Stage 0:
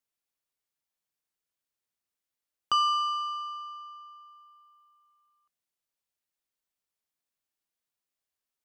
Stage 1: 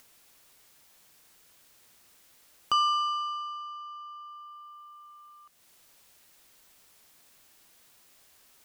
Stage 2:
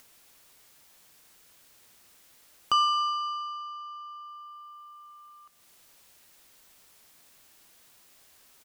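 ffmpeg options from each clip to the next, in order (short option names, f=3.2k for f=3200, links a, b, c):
-af "acompressor=mode=upward:threshold=-37dB:ratio=2.5"
-af "aecho=1:1:129|258|387|516:0.1|0.055|0.0303|0.0166,volume=1.5dB"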